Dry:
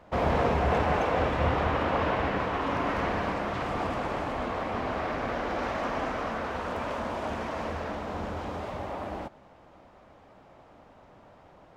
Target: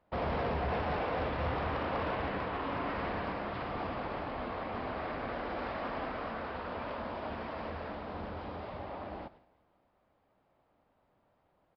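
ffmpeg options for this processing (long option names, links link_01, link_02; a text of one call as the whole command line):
ffmpeg -i in.wav -af "aresample=11025,asoftclip=type=hard:threshold=-22dB,aresample=44100,agate=range=-12dB:threshold=-48dB:ratio=16:detection=peak,aecho=1:1:177|354|531:0.0668|0.0307|0.0141,volume=-6.5dB" out.wav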